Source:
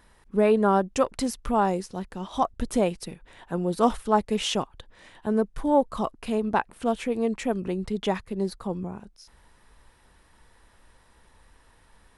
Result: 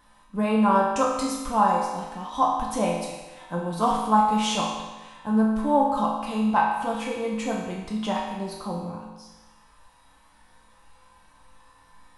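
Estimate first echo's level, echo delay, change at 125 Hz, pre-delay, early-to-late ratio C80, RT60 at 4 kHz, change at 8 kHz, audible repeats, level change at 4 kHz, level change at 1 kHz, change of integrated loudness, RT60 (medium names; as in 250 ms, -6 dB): no echo, no echo, 0.0 dB, 4 ms, 4.0 dB, 1.1 s, +2.0 dB, no echo, +1.0 dB, +5.5 dB, +1.5 dB, 1.2 s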